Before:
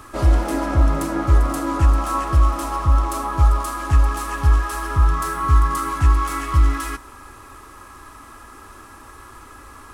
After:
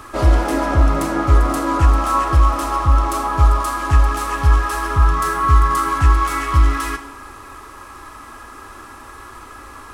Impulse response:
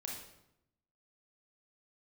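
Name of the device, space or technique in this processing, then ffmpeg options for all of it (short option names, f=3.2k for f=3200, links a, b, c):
filtered reverb send: -filter_complex "[0:a]asplit=2[a][b];[b]highpass=250,lowpass=7k[c];[1:a]atrim=start_sample=2205[d];[c][d]afir=irnorm=-1:irlink=0,volume=-3.5dB[e];[a][e]amix=inputs=2:normalize=0,volume=2dB"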